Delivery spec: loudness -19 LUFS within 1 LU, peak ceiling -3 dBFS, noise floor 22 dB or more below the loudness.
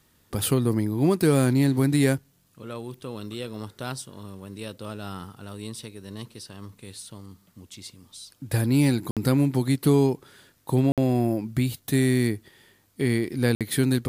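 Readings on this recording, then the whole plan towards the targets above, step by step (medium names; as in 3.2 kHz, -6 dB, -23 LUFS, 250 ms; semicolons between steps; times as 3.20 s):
dropouts 3; longest dropout 57 ms; loudness -24.0 LUFS; peak level -8.5 dBFS; loudness target -19.0 LUFS
-> interpolate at 9.11/10.92/13.55 s, 57 ms; trim +5 dB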